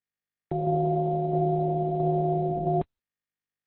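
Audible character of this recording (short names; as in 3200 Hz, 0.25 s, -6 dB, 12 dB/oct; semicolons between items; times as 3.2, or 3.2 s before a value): tremolo saw down 1.5 Hz, depth 40%; a quantiser's noise floor 10-bit, dither none; Opus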